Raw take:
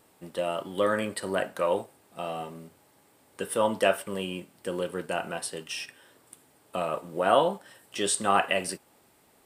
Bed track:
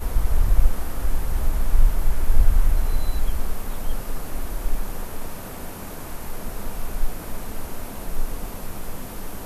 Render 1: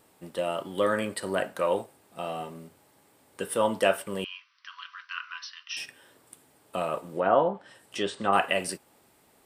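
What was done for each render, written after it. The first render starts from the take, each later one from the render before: 4.24–5.77 brick-wall FIR band-pass 980–6100 Hz; 7.13–8.33 treble ducked by the level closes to 1400 Hz, closed at -20.5 dBFS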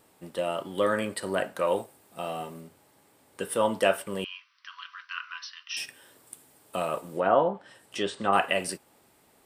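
1.67–2.61 high shelf 8400 Hz +6.5 dB; 5.74–7.33 high shelf 5700 Hz +7 dB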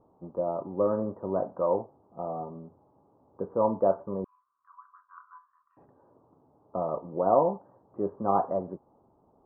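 steep low-pass 1100 Hz 48 dB/oct; low shelf 120 Hz +4 dB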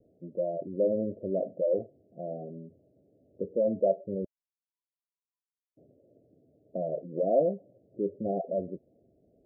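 spectral gate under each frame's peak -15 dB strong; steep low-pass 670 Hz 96 dB/oct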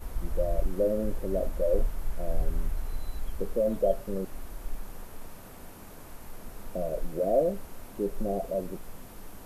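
add bed track -12 dB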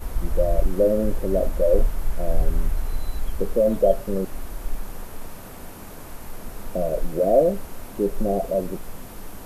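gain +7.5 dB

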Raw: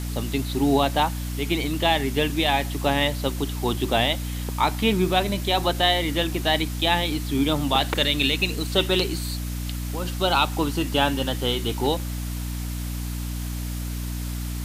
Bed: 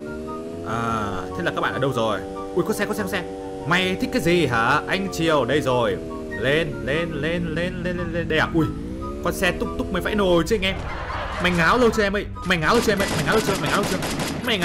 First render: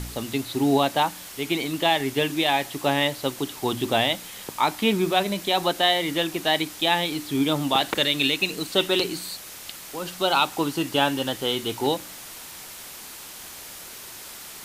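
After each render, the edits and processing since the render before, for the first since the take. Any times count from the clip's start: de-hum 60 Hz, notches 5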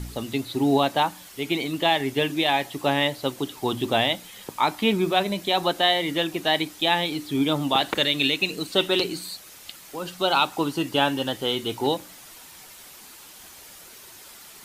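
denoiser 7 dB, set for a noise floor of -41 dBFS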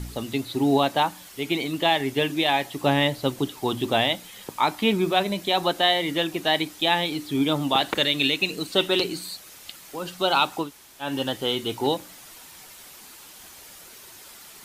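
2.81–3.5 low shelf 220 Hz +8 dB; 10.64–11.07 room tone, crossfade 0.16 s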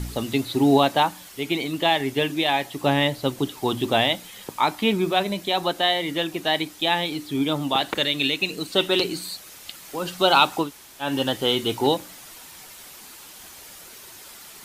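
vocal rider 2 s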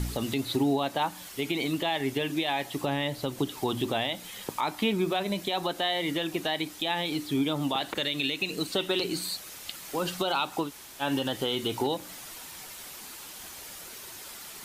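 compressor 3:1, threshold -24 dBFS, peak gain reduction 10 dB; limiter -17 dBFS, peak gain reduction 6.5 dB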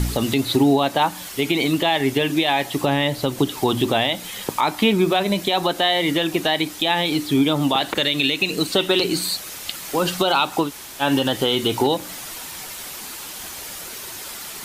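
gain +9.5 dB

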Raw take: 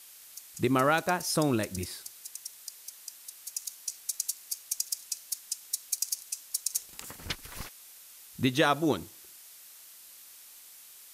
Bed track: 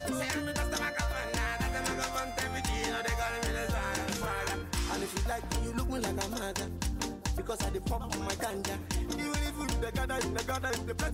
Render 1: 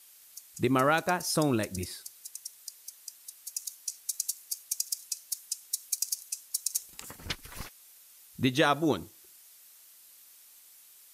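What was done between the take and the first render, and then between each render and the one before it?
denoiser 6 dB, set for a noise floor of -52 dBFS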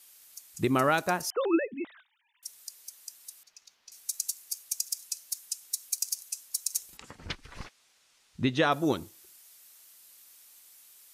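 1.3–2.43 sine-wave speech; 3.43–3.92 air absorption 240 m; 6.97–8.72 air absorption 99 m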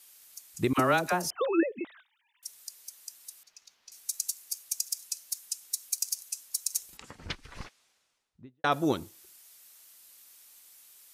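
0.73–1.81 dispersion lows, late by 55 ms, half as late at 720 Hz; 7.59–8.64 studio fade out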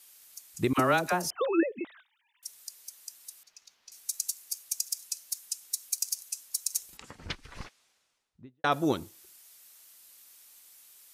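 nothing audible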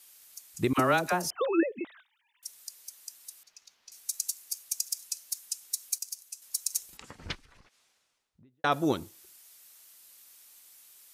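5.98–6.42 gain -6.5 dB; 7.38–8.59 compressor 8:1, threshold -55 dBFS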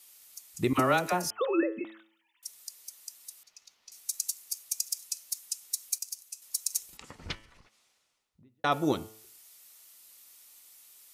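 notch 1600 Hz, Q 14; de-hum 109.5 Hz, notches 30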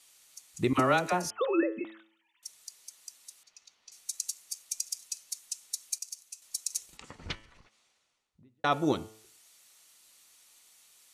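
LPF 8700 Hz 12 dB/oct; notch 5100 Hz, Q 17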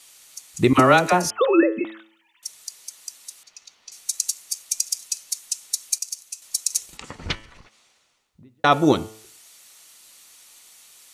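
gain +10.5 dB

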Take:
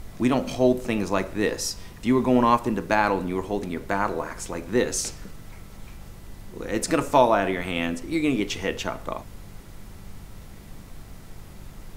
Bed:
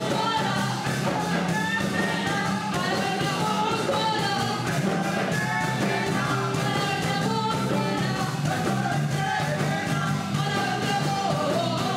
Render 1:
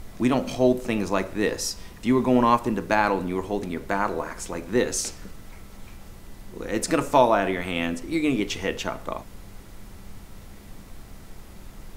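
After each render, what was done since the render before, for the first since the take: de-hum 50 Hz, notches 3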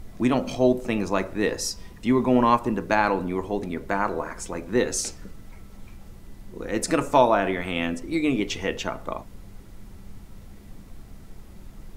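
denoiser 6 dB, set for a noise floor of -45 dBFS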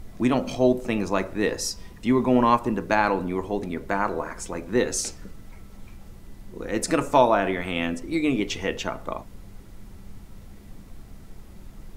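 nothing audible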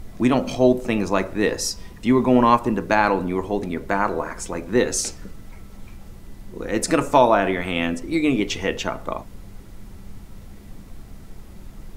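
gain +3.5 dB; limiter -2 dBFS, peak gain reduction 2 dB

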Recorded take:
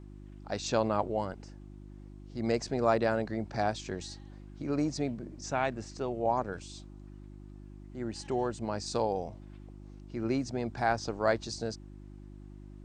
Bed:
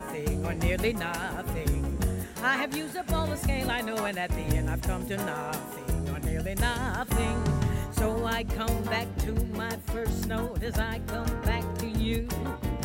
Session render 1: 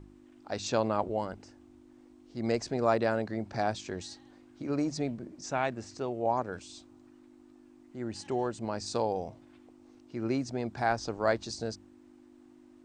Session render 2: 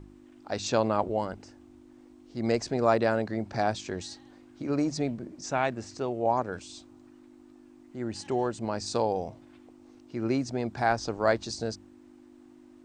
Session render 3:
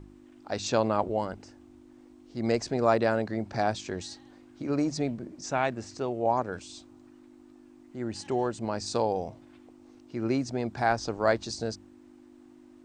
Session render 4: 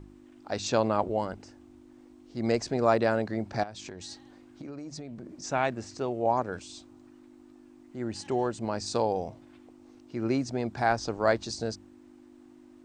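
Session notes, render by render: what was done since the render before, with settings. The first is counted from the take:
de-hum 50 Hz, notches 4
gain +3 dB
nothing audible
3.63–5.36 compressor 10:1, threshold -37 dBFS

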